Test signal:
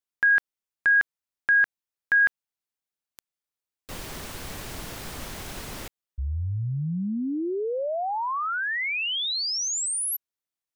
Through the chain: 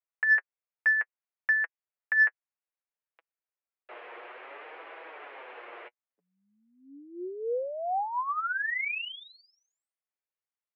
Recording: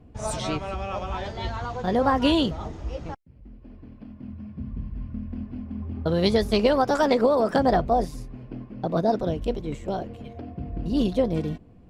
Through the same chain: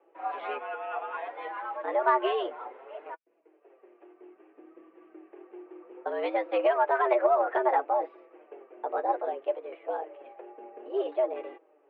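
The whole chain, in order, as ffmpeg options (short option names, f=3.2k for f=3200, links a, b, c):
-af "highpass=f=310:t=q:w=0.5412,highpass=f=310:t=q:w=1.307,lowpass=f=2.5k:t=q:w=0.5176,lowpass=f=2.5k:t=q:w=0.7071,lowpass=f=2.5k:t=q:w=1.932,afreqshift=110,flanger=delay=6:depth=2.5:regen=27:speed=0.61:shape=sinusoidal,acontrast=53,volume=-5.5dB"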